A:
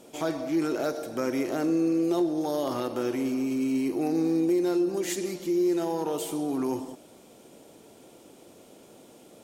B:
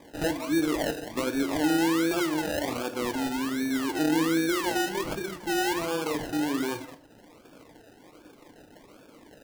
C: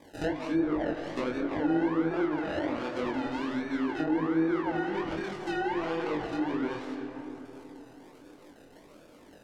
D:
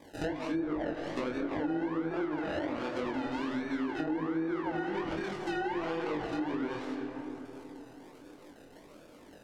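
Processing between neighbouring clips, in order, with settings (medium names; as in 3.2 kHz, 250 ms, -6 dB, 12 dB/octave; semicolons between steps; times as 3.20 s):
decimation with a swept rate 31×, swing 60% 1.3 Hz; reverb removal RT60 0.56 s; on a send at -8.5 dB: reverberation RT60 0.60 s, pre-delay 3 ms
algorithmic reverb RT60 4.1 s, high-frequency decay 0.35×, pre-delay 105 ms, DRR 7 dB; low-pass that closes with the level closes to 1.4 kHz, closed at -21.5 dBFS; chorus 2.6 Hz, delay 19.5 ms, depth 5.4 ms
compression 4:1, threshold -30 dBFS, peak gain reduction 7 dB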